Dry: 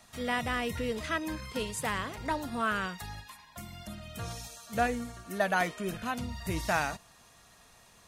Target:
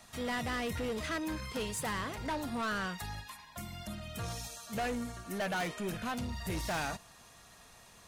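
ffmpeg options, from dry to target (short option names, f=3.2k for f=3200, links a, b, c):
-af "asoftclip=type=tanh:threshold=-32.5dB,volume=1.5dB"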